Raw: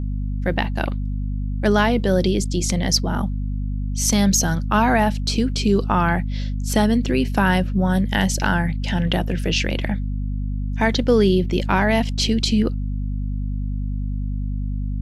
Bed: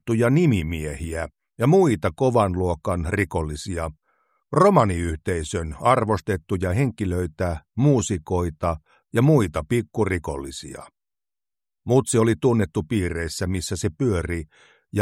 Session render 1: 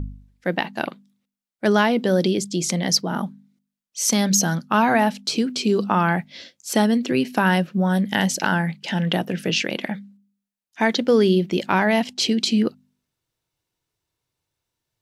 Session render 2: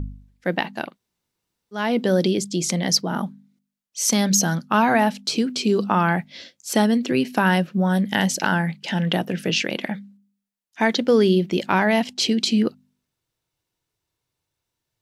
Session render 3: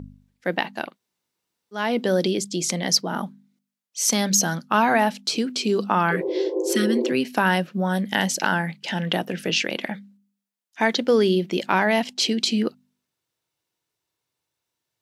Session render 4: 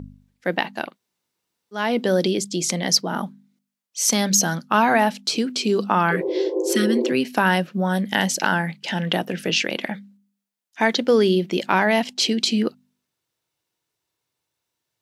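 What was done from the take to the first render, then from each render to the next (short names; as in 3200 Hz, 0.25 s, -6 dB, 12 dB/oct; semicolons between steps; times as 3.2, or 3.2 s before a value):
de-hum 50 Hz, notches 5
0.86–1.83 room tone, crossfade 0.24 s
6.14–7.08 spectral repair 320–1100 Hz after; HPF 250 Hz 6 dB/oct
gain +1.5 dB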